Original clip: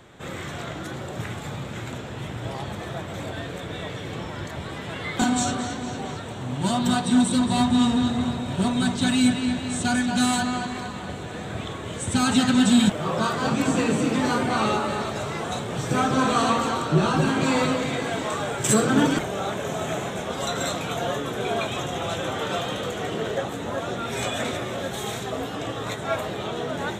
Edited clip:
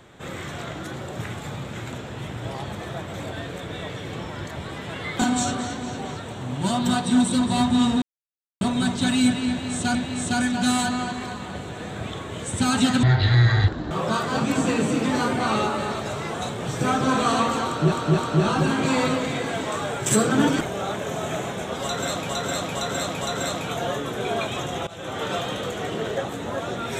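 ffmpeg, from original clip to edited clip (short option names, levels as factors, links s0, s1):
-filter_complex "[0:a]asplit=12[s0][s1][s2][s3][s4][s5][s6][s7][s8][s9][s10][s11];[s0]atrim=end=8.02,asetpts=PTS-STARTPTS,afade=t=out:st=8.016:d=0.004:c=hsin[s12];[s1]atrim=start=8.02:end=8.61,asetpts=PTS-STARTPTS,volume=0[s13];[s2]atrim=start=8.61:end=9.952,asetpts=PTS-STARTPTS,afade=t=in:d=0.004:c=hsin[s14];[s3]atrim=start=9.488:end=12.574[s15];[s4]atrim=start=12.57:end=13.01,asetpts=PTS-STARTPTS,asetrate=22050,aresample=44100[s16];[s5]atrim=start=13.006:end=17.022[s17];[s6]atrim=start=16.758:end=17.022[s18];[s7]atrim=start=16.758:end=20.872[s19];[s8]atrim=start=20.408:end=20.872[s20];[s9]atrim=start=20.408:end=20.872[s21];[s10]atrim=start=20.408:end=22.07,asetpts=PTS-STARTPTS,afade=t=out:st=1.658:d=0.004:c=hsin:silence=0.11885[s22];[s11]atrim=start=22.07,asetpts=PTS-STARTPTS,afade=t=in:d=0.36:silence=0.11885[s23];[s12][s13][s14]concat=n=3:v=0:a=1[s24];[s24][s15]acrossfade=d=0.004:c1=hsin:c2=hsin[s25];[s25][s16]acrossfade=d=0.004:c1=hsin:c2=hsin[s26];[s26][s17]acrossfade=d=0.004:c1=hsin:c2=hsin[s27];[s27][s18]acrossfade=d=0.004:c1=hsin:c2=hsin[s28];[s28][s19]acrossfade=d=0.004:c1=hsin:c2=hsin[s29];[s29][s20]acrossfade=d=0.004:c1=hsin:c2=hsin[s30];[s30][s21]acrossfade=d=0.004:c1=hsin:c2=hsin[s31];[s22][s23]concat=n=2:v=0:a=1[s32];[s31][s32]acrossfade=d=0.004:c1=hsin:c2=hsin"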